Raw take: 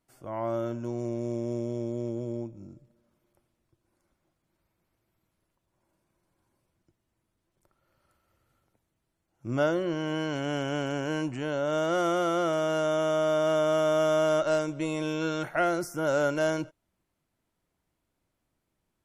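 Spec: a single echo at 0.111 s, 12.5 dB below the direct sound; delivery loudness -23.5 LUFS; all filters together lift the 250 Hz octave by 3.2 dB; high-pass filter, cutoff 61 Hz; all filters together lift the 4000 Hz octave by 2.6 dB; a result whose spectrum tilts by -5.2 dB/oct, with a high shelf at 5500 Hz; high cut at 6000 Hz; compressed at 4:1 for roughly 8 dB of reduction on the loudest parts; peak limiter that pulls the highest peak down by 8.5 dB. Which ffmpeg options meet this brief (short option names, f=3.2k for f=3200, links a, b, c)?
-af "highpass=61,lowpass=6k,equalizer=f=250:t=o:g=4.5,equalizer=f=4k:t=o:g=3,highshelf=f=5.5k:g=4,acompressor=threshold=-30dB:ratio=4,alimiter=level_in=3dB:limit=-24dB:level=0:latency=1,volume=-3dB,aecho=1:1:111:0.237,volume=12.5dB"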